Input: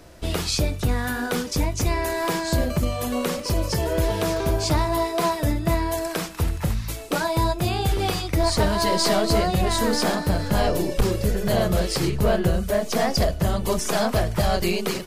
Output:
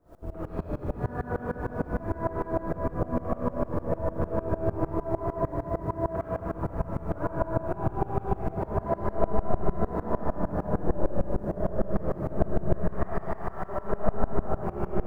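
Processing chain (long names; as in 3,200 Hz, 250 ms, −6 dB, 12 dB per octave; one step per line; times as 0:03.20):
low-pass filter 1,300 Hz 24 dB per octave
reverb reduction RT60 0.61 s
0:12.71–0:13.69: high-pass filter 930 Hz 24 dB per octave
downward compressor 12 to 1, threshold −27 dBFS, peak gain reduction 13 dB
bit-depth reduction 12 bits, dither triangular
convolution reverb RT60 5.0 s, pre-delay 25 ms, DRR −8.5 dB
tremolo with a ramp in dB swelling 6.6 Hz, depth 23 dB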